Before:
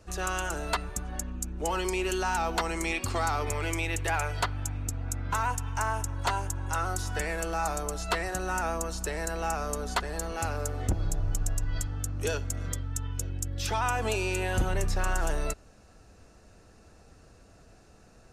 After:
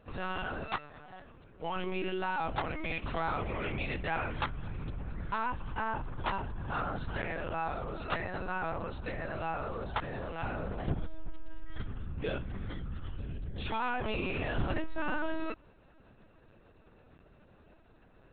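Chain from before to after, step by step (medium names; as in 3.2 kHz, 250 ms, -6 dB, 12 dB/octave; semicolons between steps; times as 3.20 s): 0.65–1.76 s: high-pass 370 Hz 12 dB/octave; LPC vocoder at 8 kHz pitch kept; trim -4.5 dB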